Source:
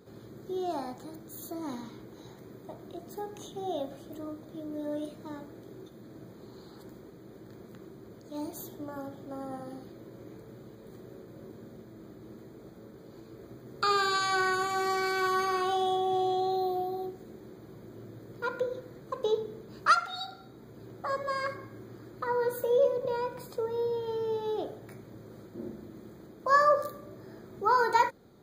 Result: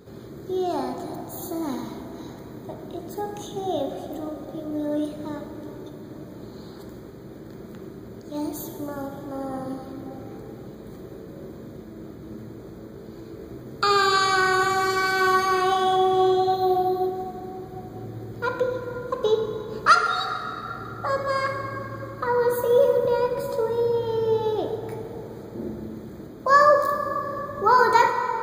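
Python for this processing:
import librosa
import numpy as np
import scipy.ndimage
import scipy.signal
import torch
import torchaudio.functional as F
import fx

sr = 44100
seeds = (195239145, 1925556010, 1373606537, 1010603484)

y = fx.low_shelf(x, sr, hz=120.0, db=5.5)
y = fx.rev_plate(y, sr, seeds[0], rt60_s=3.8, hf_ratio=0.5, predelay_ms=0, drr_db=5.5)
y = F.gain(torch.from_numpy(y), 6.5).numpy()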